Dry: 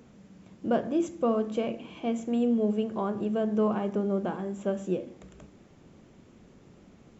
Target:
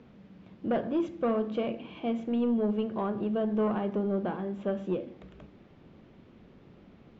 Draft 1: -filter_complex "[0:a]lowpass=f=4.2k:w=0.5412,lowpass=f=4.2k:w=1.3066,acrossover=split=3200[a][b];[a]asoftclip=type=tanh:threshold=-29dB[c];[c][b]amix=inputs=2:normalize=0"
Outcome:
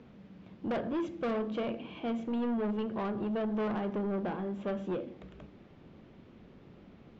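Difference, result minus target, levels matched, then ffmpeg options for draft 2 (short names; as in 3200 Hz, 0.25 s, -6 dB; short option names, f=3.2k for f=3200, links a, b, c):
soft clip: distortion +9 dB
-filter_complex "[0:a]lowpass=f=4.2k:w=0.5412,lowpass=f=4.2k:w=1.3066,acrossover=split=3200[a][b];[a]asoftclip=type=tanh:threshold=-20.5dB[c];[c][b]amix=inputs=2:normalize=0"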